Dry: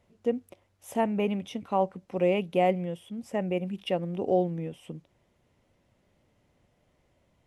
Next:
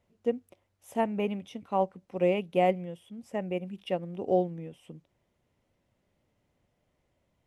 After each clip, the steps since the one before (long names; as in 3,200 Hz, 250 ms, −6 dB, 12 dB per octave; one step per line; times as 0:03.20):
expander for the loud parts 1.5 to 1, over −33 dBFS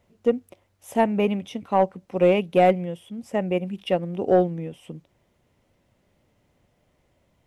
soft clipping −15 dBFS, distortion −20 dB
level +8.5 dB